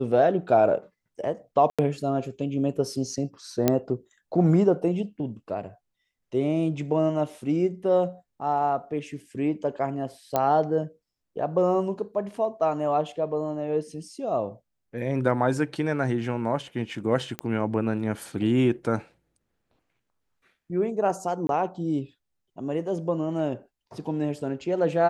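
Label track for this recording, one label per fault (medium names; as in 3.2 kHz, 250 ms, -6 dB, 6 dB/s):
1.700000	1.790000	dropout 86 ms
3.680000	3.680000	pop -6 dBFS
10.360000	10.360000	pop -10 dBFS
17.390000	17.390000	pop -14 dBFS
21.470000	21.490000	dropout 22 ms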